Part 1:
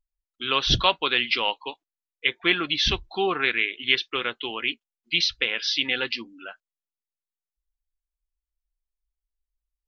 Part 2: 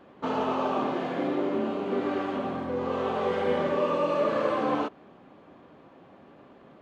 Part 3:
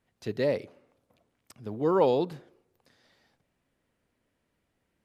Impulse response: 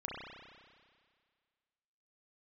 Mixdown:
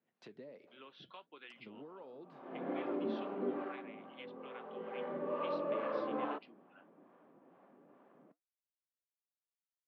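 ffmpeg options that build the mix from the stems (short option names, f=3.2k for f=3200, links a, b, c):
-filter_complex "[0:a]lowpass=f=2.2k:p=1,adelay=300,volume=-18dB[a];[1:a]lowpass=1.8k,adelay=1500,volume=6.5dB,afade=t=in:st=2.3:d=0.3:silence=0.421697,afade=t=out:st=3.51:d=0.37:silence=0.298538,afade=t=in:st=4.69:d=0.79:silence=0.334965[b];[2:a]acompressor=threshold=-29dB:ratio=4,volume=-1dB,asplit=2[c][d];[d]apad=whole_len=366725[e];[b][e]sidechaincompress=threshold=-51dB:ratio=6:attack=16:release=270[f];[a][c]amix=inputs=2:normalize=0,lowpass=3.2k,acompressor=threshold=-42dB:ratio=8,volume=0dB[g];[f][g]amix=inputs=2:normalize=0,acrossover=split=540[h][i];[h]aeval=exprs='val(0)*(1-0.5/2+0.5/2*cos(2*PI*2.3*n/s))':c=same[j];[i]aeval=exprs='val(0)*(1-0.5/2-0.5/2*cos(2*PI*2.3*n/s))':c=same[k];[j][k]amix=inputs=2:normalize=0,highpass=f=170:w=0.5412,highpass=f=170:w=1.3066,flanger=delay=1.2:depth=6.4:regen=-77:speed=1.4:shape=triangular"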